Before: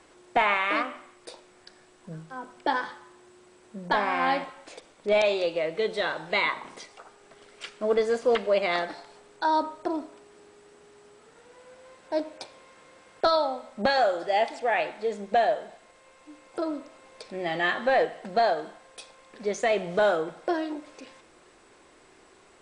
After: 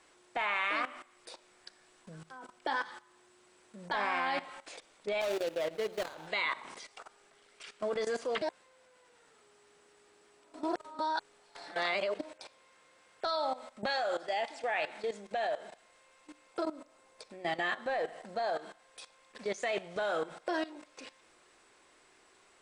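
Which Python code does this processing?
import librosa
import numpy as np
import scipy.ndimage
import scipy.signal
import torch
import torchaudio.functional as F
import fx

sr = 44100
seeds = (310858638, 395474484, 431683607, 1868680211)

y = fx.median_filter(x, sr, points=25, at=(5.2, 6.26), fade=0.02)
y = fx.peak_eq(y, sr, hz=2800.0, db=-5.5, octaves=2.1, at=(16.63, 18.56))
y = fx.edit(y, sr, fx.reverse_span(start_s=8.42, length_s=3.77), tone=tone)
y = fx.tilt_shelf(y, sr, db=-4.5, hz=710.0)
y = fx.level_steps(y, sr, step_db=16)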